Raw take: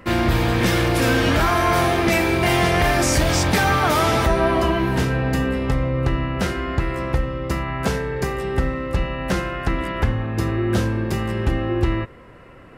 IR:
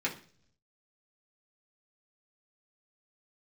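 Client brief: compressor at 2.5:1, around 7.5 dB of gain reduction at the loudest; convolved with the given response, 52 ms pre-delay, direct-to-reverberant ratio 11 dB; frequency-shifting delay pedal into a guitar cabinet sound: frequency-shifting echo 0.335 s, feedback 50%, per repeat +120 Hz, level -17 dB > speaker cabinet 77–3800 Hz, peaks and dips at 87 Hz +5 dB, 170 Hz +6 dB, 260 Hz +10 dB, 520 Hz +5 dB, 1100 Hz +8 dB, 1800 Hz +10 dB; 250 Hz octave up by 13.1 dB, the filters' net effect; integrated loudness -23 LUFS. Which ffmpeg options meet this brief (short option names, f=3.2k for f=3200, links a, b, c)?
-filter_complex "[0:a]equalizer=f=250:t=o:g=7.5,acompressor=threshold=-23dB:ratio=2.5,asplit=2[a][b];[1:a]atrim=start_sample=2205,adelay=52[c];[b][c]afir=irnorm=-1:irlink=0,volume=-17.5dB[d];[a][d]amix=inputs=2:normalize=0,asplit=5[e][f][g][h][i];[f]adelay=335,afreqshift=120,volume=-17dB[j];[g]adelay=670,afreqshift=240,volume=-23dB[k];[h]adelay=1005,afreqshift=360,volume=-29dB[l];[i]adelay=1340,afreqshift=480,volume=-35.1dB[m];[e][j][k][l][m]amix=inputs=5:normalize=0,highpass=77,equalizer=f=87:t=q:w=4:g=5,equalizer=f=170:t=q:w=4:g=6,equalizer=f=260:t=q:w=4:g=10,equalizer=f=520:t=q:w=4:g=5,equalizer=f=1.1k:t=q:w=4:g=8,equalizer=f=1.8k:t=q:w=4:g=10,lowpass=f=3.8k:w=0.5412,lowpass=f=3.8k:w=1.3066,volume=-5dB"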